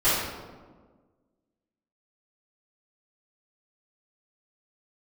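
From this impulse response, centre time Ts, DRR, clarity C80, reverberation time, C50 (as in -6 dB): 86 ms, -15.0 dB, 2.5 dB, 1.5 s, -1.5 dB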